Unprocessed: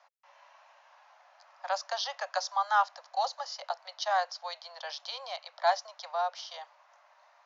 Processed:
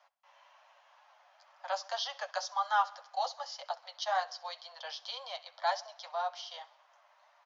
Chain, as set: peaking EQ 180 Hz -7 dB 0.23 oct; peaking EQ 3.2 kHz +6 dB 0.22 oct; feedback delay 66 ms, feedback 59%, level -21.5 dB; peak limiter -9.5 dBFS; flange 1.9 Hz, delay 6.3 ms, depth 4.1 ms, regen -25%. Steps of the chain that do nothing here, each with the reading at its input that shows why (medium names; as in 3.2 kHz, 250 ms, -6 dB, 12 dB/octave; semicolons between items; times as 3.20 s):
peaking EQ 180 Hz: input has nothing below 450 Hz; peak limiter -9.5 dBFS: peak at its input -14.0 dBFS